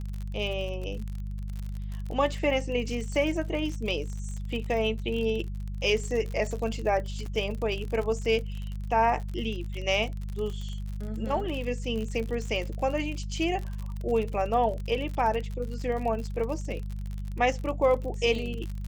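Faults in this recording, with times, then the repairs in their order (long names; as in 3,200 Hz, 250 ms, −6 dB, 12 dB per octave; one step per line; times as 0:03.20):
surface crackle 55 per second −33 dBFS
mains hum 50 Hz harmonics 4 −34 dBFS
0:07.26: drop-out 2.2 ms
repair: click removal
hum removal 50 Hz, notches 4
repair the gap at 0:07.26, 2.2 ms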